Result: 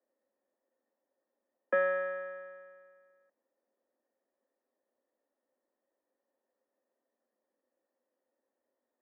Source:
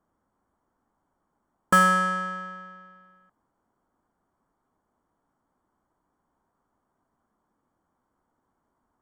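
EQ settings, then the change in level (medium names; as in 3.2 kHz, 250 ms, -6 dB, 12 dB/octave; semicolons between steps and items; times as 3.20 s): cascade formant filter e; steep high-pass 210 Hz 96 dB/octave; band-stop 470 Hz, Q 12; +5.0 dB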